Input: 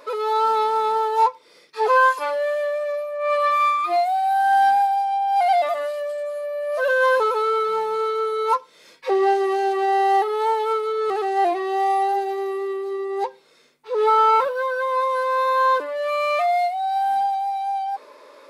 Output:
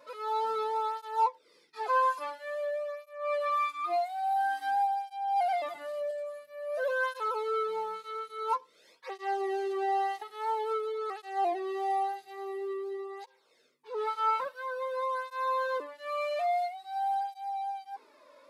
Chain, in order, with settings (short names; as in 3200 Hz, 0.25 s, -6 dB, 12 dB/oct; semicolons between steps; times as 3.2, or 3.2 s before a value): 5.52–6.11 low shelf 340 Hz +10.5 dB; tape flanging out of phase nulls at 0.49 Hz, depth 2.6 ms; gain -8.5 dB